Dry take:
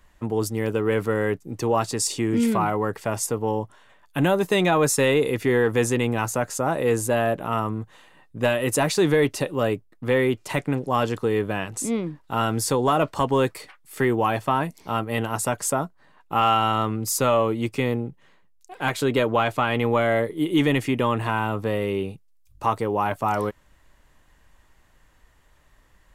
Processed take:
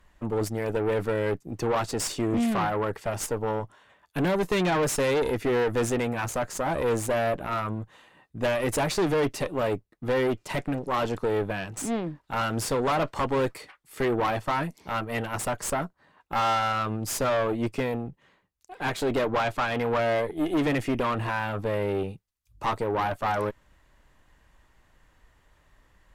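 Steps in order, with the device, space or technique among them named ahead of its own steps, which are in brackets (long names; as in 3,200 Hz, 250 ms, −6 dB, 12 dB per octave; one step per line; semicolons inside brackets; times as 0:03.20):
tube preamp driven hard (tube saturation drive 23 dB, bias 0.7; high-shelf EQ 6,100 Hz −6 dB)
level +2.5 dB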